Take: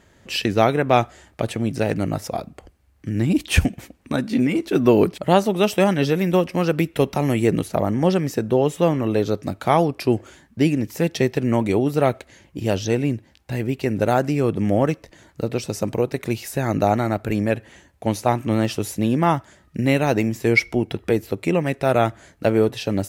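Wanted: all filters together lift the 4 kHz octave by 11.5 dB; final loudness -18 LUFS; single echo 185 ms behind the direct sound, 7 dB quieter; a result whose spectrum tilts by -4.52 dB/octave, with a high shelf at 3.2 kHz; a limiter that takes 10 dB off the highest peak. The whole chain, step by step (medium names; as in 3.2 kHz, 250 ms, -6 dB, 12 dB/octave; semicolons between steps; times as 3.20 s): treble shelf 3.2 kHz +9 dB; peaking EQ 4 kHz +8.5 dB; peak limiter -8 dBFS; delay 185 ms -7 dB; trim +2.5 dB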